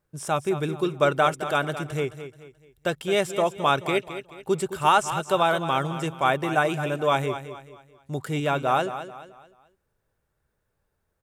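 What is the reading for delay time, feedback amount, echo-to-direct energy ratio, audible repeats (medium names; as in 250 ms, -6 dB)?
216 ms, 37%, -11.0 dB, 3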